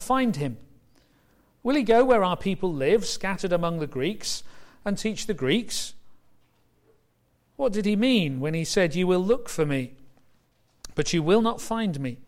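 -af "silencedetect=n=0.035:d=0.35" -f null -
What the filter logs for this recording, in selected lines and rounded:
silence_start: 0.52
silence_end: 1.65 | silence_duration: 1.14
silence_start: 4.38
silence_end: 4.86 | silence_duration: 0.48
silence_start: 5.88
silence_end: 7.59 | silence_duration: 1.72
silence_start: 9.85
silence_end: 10.85 | silence_duration: 0.99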